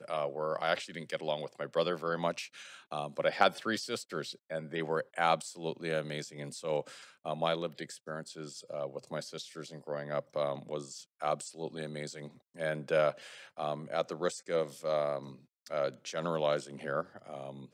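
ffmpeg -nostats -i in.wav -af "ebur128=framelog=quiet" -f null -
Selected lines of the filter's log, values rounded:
Integrated loudness:
  I:         -35.4 LUFS
  Threshold: -45.6 LUFS
Loudness range:
  LRA:         5.2 LU
  Threshold: -55.6 LUFS
  LRA low:   -38.7 LUFS
  LRA high:  -33.5 LUFS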